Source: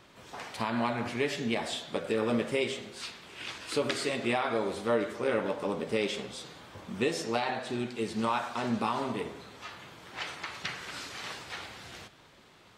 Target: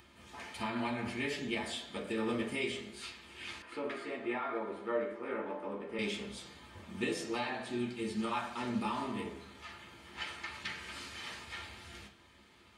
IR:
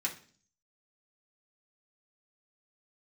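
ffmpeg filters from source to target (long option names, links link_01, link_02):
-filter_complex "[0:a]equalizer=frequency=66:width_type=o:width=0.75:gain=13.5[link_01];[1:a]atrim=start_sample=2205,asetrate=52920,aresample=44100[link_02];[link_01][link_02]afir=irnorm=-1:irlink=0,acompressor=mode=upward:threshold=-52dB:ratio=2.5,asettb=1/sr,asplit=3[link_03][link_04][link_05];[link_03]atrim=end=3.624[link_06];[link_04]atrim=start=3.62:end=5.99,asetpts=PTS-STARTPTS,afade=type=in:duration=0.004:curve=qsin,afade=type=out:start_time=2.366:duration=0.004:curve=qsin,acrossover=split=260 2200:gain=0.2 1 0.126[link_07][link_08][link_09];[link_07][link_08][link_09]amix=inputs=3:normalize=0[link_10];[link_05]atrim=start=5.986[link_11];[link_06][link_10]acrossfade=duration=0.004:curve1=hsin:curve2=qsin[link_12];[link_12][link_11]acrossfade=duration=0.004:curve1=qsin:curve2=hsin,volume=-6dB"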